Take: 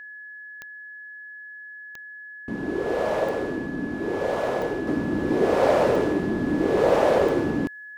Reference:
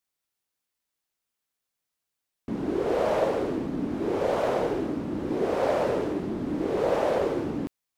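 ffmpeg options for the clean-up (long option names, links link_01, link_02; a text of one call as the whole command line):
ffmpeg -i in.wav -af "adeclick=threshold=4,bandreject=frequency=1700:width=30,asetnsamples=nb_out_samples=441:pad=0,asendcmd='4.87 volume volume -5.5dB',volume=0dB" out.wav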